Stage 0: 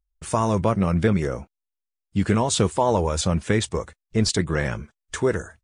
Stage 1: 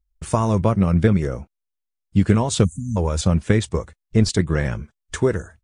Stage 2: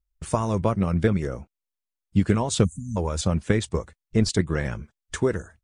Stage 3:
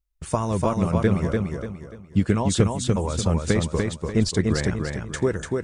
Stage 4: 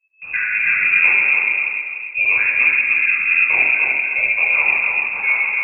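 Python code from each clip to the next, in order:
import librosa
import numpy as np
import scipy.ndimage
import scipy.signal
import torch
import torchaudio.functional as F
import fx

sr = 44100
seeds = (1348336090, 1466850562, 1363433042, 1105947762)

y1 = fx.transient(x, sr, attack_db=3, sustain_db=-2)
y1 = fx.spec_erase(y1, sr, start_s=2.64, length_s=0.33, low_hz=270.0, high_hz=5900.0)
y1 = fx.low_shelf(y1, sr, hz=240.0, db=7.5)
y1 = y1 * 10.0 ** (-1.5 / 20.0)
y2 = fx.hpss(y1, sr, part='harmonic', gain_db=-4)
y2 = y2 * 10.0 ** (-2.5 / 20.0)
y3 = fx.echo_feedback(y2, sr, ms=293, feedback_pct=35, wet_db=-3.5)
y4 = fx.room_shoebox(y3, sr, seeds[0], volume_m3=870.0, walls='mixed', distance_m=4.9)
y4 = fx.freq_invert(y4, sr, carrier_hz=2600)
y4 = y4 * 10.0 ** (-6.5 / 20.0)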